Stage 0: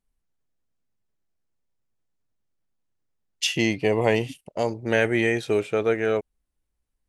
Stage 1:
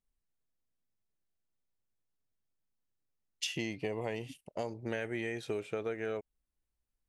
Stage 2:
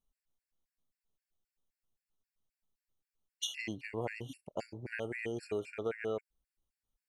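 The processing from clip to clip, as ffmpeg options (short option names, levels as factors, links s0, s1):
-af "acompressor=threshold=0.0562:ratio=6,volume=0.422"
-af "afftfilt=real='re*gt(sin(2*PI*3.8*pts/sr)*(1-2*mod(floor(b*sr/1024/1400),2)),0)':imag='im*gt(sin(2*PI*3.8*pts/sr)*(1-2*mod(floor(b*sr/1024/1400),2)),0)':win_size=1024:overlap=0.75,volume=1.19"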